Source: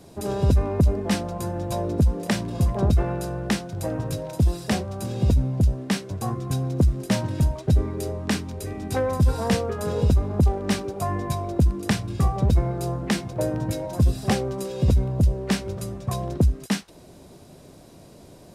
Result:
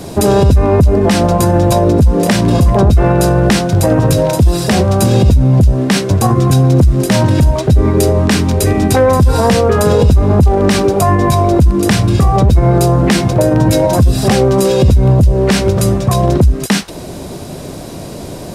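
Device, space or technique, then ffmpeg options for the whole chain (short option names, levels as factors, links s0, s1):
loud club master: -af "acompressor=threshold=0.0794:ratio=2.5,asoftclip=type=hard:threshold=0.211,alimiter=level_in=12.6:limit=0.891:release=50:level=0:latency=1,volume=0.891"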